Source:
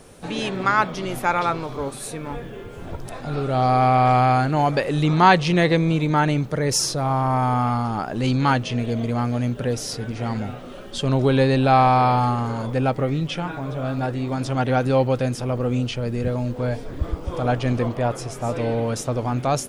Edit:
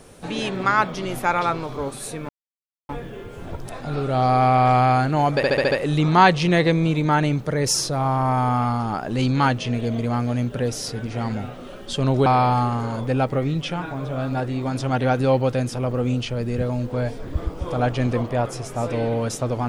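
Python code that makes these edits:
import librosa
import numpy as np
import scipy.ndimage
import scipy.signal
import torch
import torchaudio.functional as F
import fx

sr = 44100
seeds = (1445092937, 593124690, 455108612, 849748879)

y = fx.edit(x, sr, fx.insert_silence(at_s=2.29, length_s=0.6),
    fx.stutter(start_s=4.76, slice_s=0.07, count=6),
    fx.cut(start_s=11.31, length_s=0.61), tone=tone)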